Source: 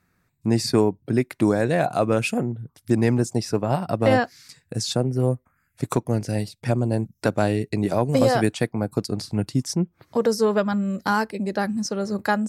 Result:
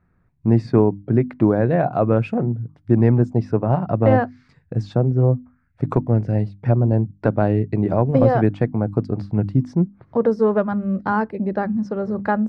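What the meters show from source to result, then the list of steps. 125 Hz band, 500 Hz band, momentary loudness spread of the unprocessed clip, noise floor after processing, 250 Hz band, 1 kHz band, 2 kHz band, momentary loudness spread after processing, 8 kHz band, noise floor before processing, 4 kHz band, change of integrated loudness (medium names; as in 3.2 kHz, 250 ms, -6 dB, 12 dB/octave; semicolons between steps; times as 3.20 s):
+6.5 dB, +2.5 dB, 7 LU, -61 dBFS, +3.5 dB, +1.5 dB, -3.0 dB, 7 LU, under -25 dB, -69 dBFS, under -15 dB, +3.5 dB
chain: low-pass 1.4 kHz 12 dB/octave; bass shelf 110 Hz +11.5 dB; hum notches 50/100/150/200/250/300 Hz; trim +2 dB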